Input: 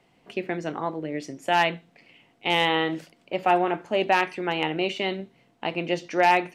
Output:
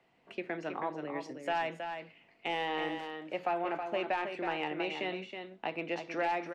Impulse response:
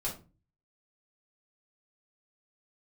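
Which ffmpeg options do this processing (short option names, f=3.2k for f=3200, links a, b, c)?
-filter_complex "[0:a]asplit=2[a][b];[b]highpass=f=720:p=1,volume=7dB,asoftclip=type=tanh:threshold=-9.5dB[c];[a][c]amix=inputs=2:normalize=0,lowpass=f=2.2k:p=1,volume=-6dB,acrossover=split=190|860[d][e][f];[d]acompressor=threshold=-50dB:ratio=4[g];[e]acompressor=threshold=-27dB:ratio=4[h];[f]acompressor=threshold=-29dB:ratio=4[i];[g][h][i]amix=inputs=3:normalize=0,asetrate=42845,aresample=44100,atempo=1.0293,asplit=2[j][k];[k]aecho=0:1:321:0.447[l];[j][l]amix=inputs=2:normalize=0,volume=-6.5dB"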